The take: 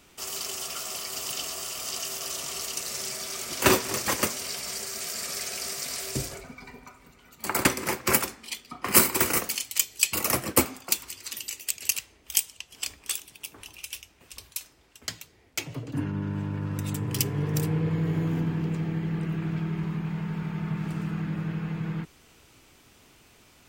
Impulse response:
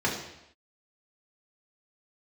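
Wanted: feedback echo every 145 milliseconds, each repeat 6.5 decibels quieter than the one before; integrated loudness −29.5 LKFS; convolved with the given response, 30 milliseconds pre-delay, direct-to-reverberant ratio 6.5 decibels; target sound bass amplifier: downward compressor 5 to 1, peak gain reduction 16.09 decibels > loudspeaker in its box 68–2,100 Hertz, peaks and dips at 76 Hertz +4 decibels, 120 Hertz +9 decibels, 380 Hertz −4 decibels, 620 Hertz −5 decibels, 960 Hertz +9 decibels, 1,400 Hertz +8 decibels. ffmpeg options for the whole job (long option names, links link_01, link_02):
-filter_complex "[0:a]aecho=1:1:145|290|435|580|725|870:0.473|0.222|0.105|0.0491|0.0231|0.0109,asplit=2[link_01][link_02];[1:a]atrim=start_sample=2205,adelay=30[link_03];[link_02][link_03]afir=irnorm=-1:irlink=0,volume=-18dB[link_04];[link_01][link_04]amix=inputs=2:normalize=0,acompressor=threshold=-30dB:ratio=5,highpass=frequency=68:width=0.5412,highpass=frequency=68:width=1.3066,equalizer=frequency=76:width_type=q:width=4:gain=4,equalizer=frequency=120:width_type=q:width=4:gain=9,equalizer=frequency=380:width_type=q:width=4:gain=-4,equalizer=frequency=620:width_type=q:width=4:gain=-5,equalizer=frequency=960:width_type=q:width=4:gain=9,equalizer=frequency=1400:width_type=q:width=4:gain=8,lowpass=frequency=2100:width=0.5412,lowpass=frequency=2100:width=1.3066,volume=5dB"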